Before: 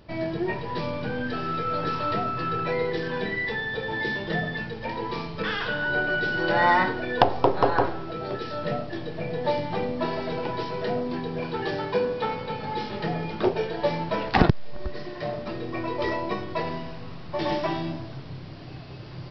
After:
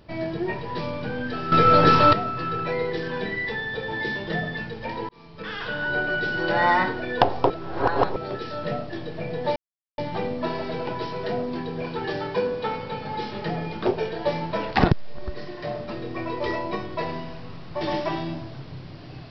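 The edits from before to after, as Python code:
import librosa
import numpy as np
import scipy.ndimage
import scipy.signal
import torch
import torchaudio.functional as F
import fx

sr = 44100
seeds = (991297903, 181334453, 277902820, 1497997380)

y = fx.edit(x, sr, fx.clip_gain(start_s=1.52, length_s=0.61, db=12.0),
    fx.fade_in_span(start_s=5.09, length_s=0.75),
    fx.reverse_span(start_s=7.5, length_s=0.66),
    fx.insert_silence(at_s=9.56, length_s=0.42), tone=tone)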